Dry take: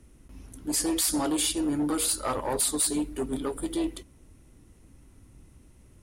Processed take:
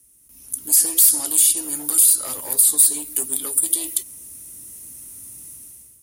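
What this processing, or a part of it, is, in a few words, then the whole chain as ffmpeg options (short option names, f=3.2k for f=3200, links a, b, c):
FM broadcast chain: -filter_complex "[0:a]highpass=58,dynaudnorm=f=210:g=5:m=16.5dB,acrossover=split=110|420|3300[a][b][c][d];[a]acompressor=threshold=-46dB:ratio=4[e];[b]acompressor=threshold=-27dB:ratio=4[f];[c]acompressor=threshold=-26dB:ratio=4[g];[d]acompressor=threshold=-24dB:ratio=4[h];[e][f][g][h]amix=inputs=4:normalize=0,aemphasis=mode=production:type=75fm,alimiter=limit=-3dB:level=0:latency=1:release=119,asoftclip=type=hard:threshold=-6.5dB,lowpass=f=15k:w=0.5412,lowpass=f=15k:w=1.3066,aemphasis=mode=production:type=75fm,volume=-13dB"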